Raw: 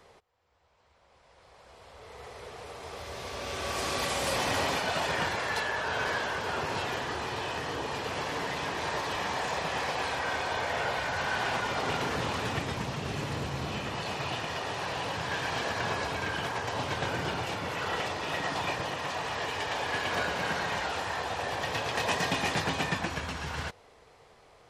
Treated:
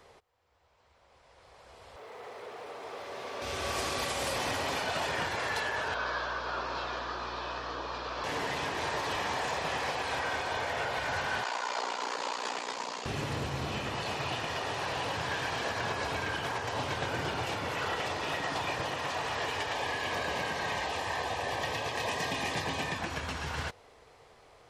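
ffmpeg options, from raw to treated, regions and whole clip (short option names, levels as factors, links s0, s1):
-filter_complex "[0:a]asettb=1/sr,asplit=3[s0][s1][s2];[s0]atrim=end=1.964[s3];[s1]atrim=start=1.96:end=3.42,asetpts=PTS-STARTPTS,afade=t=in:d=0.004:c=qsin,afade=t=out:st=1.456:d=0.004:c=qsin,aeval=exprs='val(0)+0.5*0.00299*sgn(val(0))':c=same,highpass=240,highshelf=f=4000:g=-11.5[s4];[s2]atrim=start=3.416[s5];[s3][s4]acrossfade=d=0.004:c1=hsin:c2=qsin[s6];[s6][s5]acrossfade=d=0.004:c1=qsin:c2=hsin,asettb=1/sr,asplit=3[s7][s8][s9];[s7]atrim=end=5.944[s10];[s8]atrim=start=5.94:end=8.24,asetpts=PTS-STARTPTS,afade=t=in:d=0.004:c=qsin,afade=t=out:st=2.296:d=0.004:c=qsin,highpass=370,equalizer=f=430:t=q:w=4:g=-6,equalizer=f=810:t=q:w=4:g=-6,equalizer=f=1200:t=q:w=4:g=4,equalizer=f=2000:t=q:w=4:g=-10,equalizer=f=2900:t=q:w=4:g=-7,lowpass=f=5000:w=0.5412,lowpass=f=5000:w=1.3066,aeval=exprs='val(0)+0.00398*(sin(2*PI*60*n/s)+sin(2*PI*2*60*n/s)/2+sin(2*PI*3*60*n/s)/3+sin(2*PI*4*60*n/s)/4+sin(2*PI*5*60*n/s)/5)':c=same[s11];[s9]atrim=start=8.236[s12];[s10][s11]acrossfade=d=0.004:c1=hsin:c2=qsin[s13];[s13][s12]acrossfade=d=0.004:c1=qsin:c2=hsin,asettb=1/sr,asplit=3[s14][s15][s16];[s14]atrim=end=11.434[s17];[s15]atrim=start=11.43:end=13.06,asetpts=PTS-STARTPTS,afade=t=in:d=0.004:c=qsin,afade=t=out:st=1.626:d=0.004:c=qsin,aeval=exprs='val(0)*sin(2*PI*30*n/s)':c=same,highpass=f=280:w=0.5412,highpass=f=280:w=1.3066,equalizer=f=340:t=q:w=4:g=-7,equalizer=f=980:t=q:w=4:g=7,equalizer=f=4600:t=q:w=4:g=7,equalizer=f=6900:t=q:w=4:g=8,lowpass=f=10000:w=0.5412,lowpass=f=10000:w=1.3066[s18];[s16]atrim=start=13.056[s19];[s17][s18]acrossfade=d=0.004:c1=hsin:c2=qsin[s20];[s20][s19]acrossfade=d=0.004:c1=qsin:c2=hsin,asettb=1/sr,asplit=3[s21][s22][s23];[s21]atrim=end=19.734[s24];[s22]atrim=start=19.73:end=22.98,asetpts=PTS-STARTPTS,afade=t=in:d=0.004:c=qsin,afade=t=out:st=3.246:d=0.004:c=qsin,asoftclip=type=hard:threshold=0.112,asuperstop=centerf=1400:order=12:qfactor=6.8[s25];[s23]atrim=start=22.976[s26];[s24][s25]acrossfade=d=0.004:c1=hsin:c2=qsin[s27];[s27][s26]acrossfade=d=0.004:c1=qsin:c2=hsin,equalizer=f=180:w=4.1:g=-4.5,alimiter=limit=0.0708:level=0:latency=1:release=114"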